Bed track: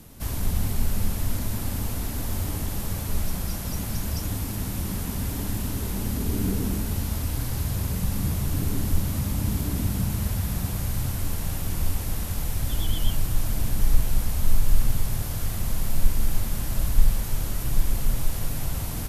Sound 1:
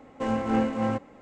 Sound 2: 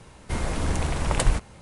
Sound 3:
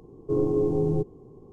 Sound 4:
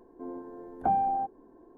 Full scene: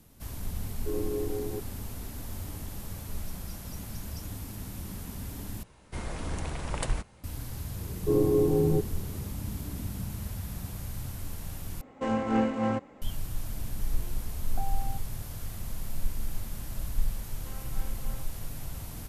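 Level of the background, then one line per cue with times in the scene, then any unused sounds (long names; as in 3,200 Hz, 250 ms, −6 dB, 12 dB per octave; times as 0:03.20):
bed track −10 dB
0:00.57: mix in 3 −8.5 dB + high-pass filter 250 Hz 24 dB per octave
0:05.63: overwrite with 2 −8.5 dB
0:07.78: mix in 3 + linearly interpolated sample-rate reduction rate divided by 4×
0:11.81: overwrite with 1 −1.5 dB
0:13.72: mix in 4 −13.5 dB
0:17.25: mix in 1 −15.5 dB + high-pass filter 1,500 Hz 6 dB per octave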